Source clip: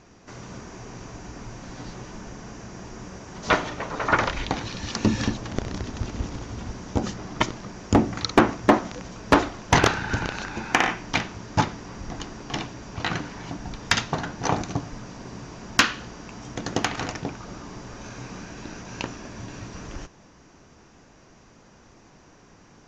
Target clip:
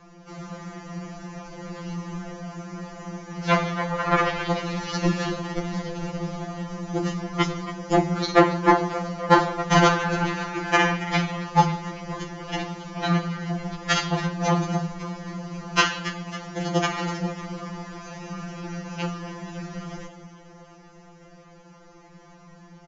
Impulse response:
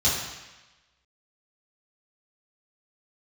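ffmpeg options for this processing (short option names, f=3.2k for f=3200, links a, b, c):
-filter_complex "[0:a]aresample=16000,aresample=44100,highshelf=f=6k:g=-11.5,asplit=7[a][b][c][d][e][f][g];[b]adelay=274,afreqshift=95,volume=-16dB[h];[c]adelay=548,afreqshift=190,volume=-20dB[i];[d]adelay=822,afreqshift=285,volume=-24dB[j];[e]adelay=1096,afreqshift=380,volume=-28dB[k];[f]adelay=1370,afreqshift=475,volume=-32.1dB[l];[g]adelay=1644,afreqshift=570,volume=-36.1dB[m];[a][h][i][j][k][l][m]amix=inputs=7:normalize=0,asplit=2[n][o];[1:a]atrim=start_sample=2205,afade=t=out:st=0.24:d=0.01,atrim=end_sample=11025[p];[o][p]afir=irnorm=-1:irlink=0,volume=-22dB[q];[n][q]amix=inputs=2:normalize=0,afftfilt=real='re*2.83*eq(mod(b,8),0)':imag='im*2.83*eq(mod(b,8),0)':win_size=2048:overlap=0.75,volume=4.5dB"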